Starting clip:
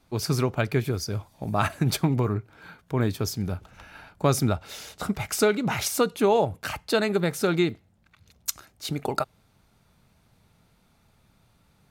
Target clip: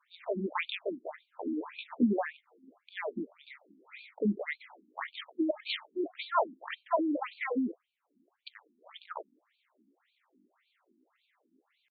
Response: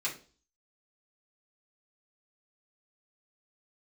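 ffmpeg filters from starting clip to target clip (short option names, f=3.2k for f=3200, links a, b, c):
-af "asetrate=66075,aresample=44100,atempo=0.66742,afftfilt=real='re*between(b*sr/1024,250*pow(3300/250,0.5+0.5*sin(2*PI*1.8*pts/sr))/1.41,250*pow(3300/250,0.5+0.5*sin(2*PI*1.8*pts/sr))*1.41)':imag='im*between(b*sr/1024,250*pow(3300/250,0.5+0.5*sin(2*PI*1.8*pts/sr))/1.41,250*pow(3300/250,0.5+0.5*sin(2*PI*1.8*pts/sr))*1.41)':win_size=1024:overlap=0.75"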